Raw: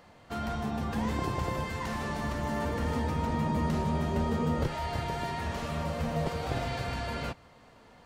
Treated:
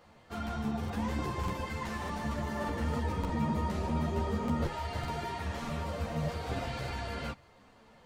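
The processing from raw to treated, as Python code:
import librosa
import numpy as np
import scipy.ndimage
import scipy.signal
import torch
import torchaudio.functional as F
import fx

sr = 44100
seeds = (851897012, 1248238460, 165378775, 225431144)

y = fx.buffer_crackle(x, sr, first_s=0.79, period_s=0.6, block=2048, kind='repeat')
y = fx.ensemble(y, sr)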